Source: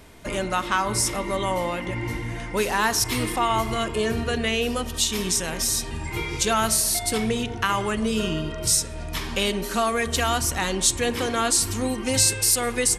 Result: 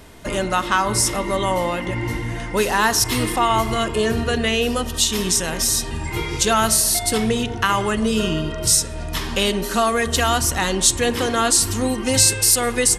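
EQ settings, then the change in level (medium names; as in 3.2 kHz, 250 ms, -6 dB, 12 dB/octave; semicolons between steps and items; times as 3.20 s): band-stop 2.3 kHz, Q 12; +4.5 dB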